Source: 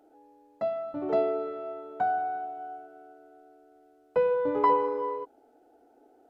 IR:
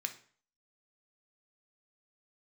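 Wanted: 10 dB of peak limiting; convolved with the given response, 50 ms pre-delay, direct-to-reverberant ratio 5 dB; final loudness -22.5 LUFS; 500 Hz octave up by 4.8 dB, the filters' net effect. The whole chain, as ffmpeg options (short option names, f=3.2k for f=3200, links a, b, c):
-filter_complex "[0:a]equalizer=f=500:t=o:g=5.5,alimiter=limit=-19.5dB:level=0:latency=1,asplit=2[a][b];[1:a]atrim=start_sample=2205,adelay=50[c];[b][c]afir=irnorm=-1:irlink=0,volume=-5.5dB[d];[a][d]amix=inputs=2:normalize=0,volume=5dB"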